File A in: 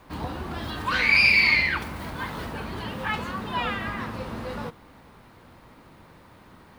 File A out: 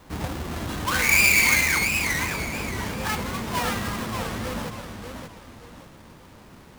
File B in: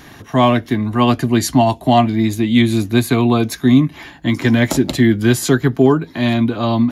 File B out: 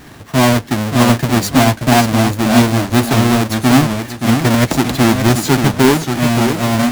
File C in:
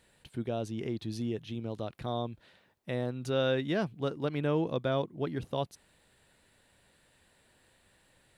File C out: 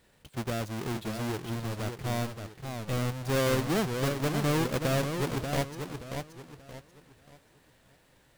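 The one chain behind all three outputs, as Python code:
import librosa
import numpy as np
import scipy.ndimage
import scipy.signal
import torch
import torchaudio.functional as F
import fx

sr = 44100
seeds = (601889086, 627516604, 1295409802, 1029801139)

y = fx.halfwave_hold(x, sr)
y = fx.echo_warbled(y, sr, ms=581, feedback_pct=33, rate_hz=2.8, cents=166, wet_db=-6.5)
y = y * 10.0 ** (-3.0 / 20.0)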